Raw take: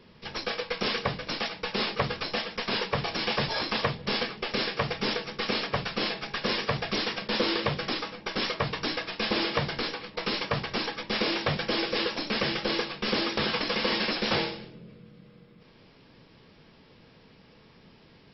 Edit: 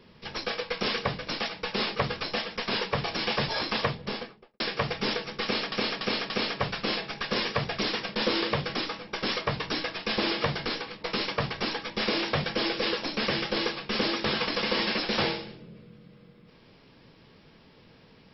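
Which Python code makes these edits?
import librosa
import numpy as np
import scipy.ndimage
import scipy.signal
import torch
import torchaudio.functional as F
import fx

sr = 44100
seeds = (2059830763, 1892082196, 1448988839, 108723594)

y = fx.studio_fade_out(x, sr, start_s=3.84, length_s=0.76)
y = fx.edit(y, sr, fx.repeat(start_s=5.43, length_s=0.29, count=4), tone=tone)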